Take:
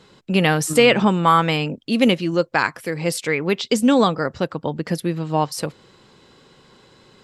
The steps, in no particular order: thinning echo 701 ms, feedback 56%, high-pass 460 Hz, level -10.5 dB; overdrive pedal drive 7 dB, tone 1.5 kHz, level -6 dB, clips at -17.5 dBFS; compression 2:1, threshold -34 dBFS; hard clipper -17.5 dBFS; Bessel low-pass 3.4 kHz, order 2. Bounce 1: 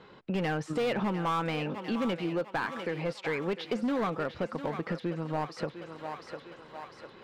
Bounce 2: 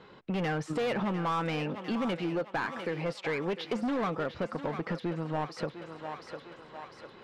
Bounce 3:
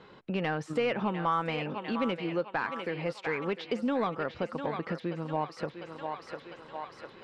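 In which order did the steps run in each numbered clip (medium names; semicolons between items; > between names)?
Bessel low-pass > overdrive pedal > hard clipper > thinning echo > compression; Bessel low-pass > hard clipper > overdrive pedal > thinning echo > compression; thinning echo > compression > hard clipper > Bessel low-pass > overdrive pedal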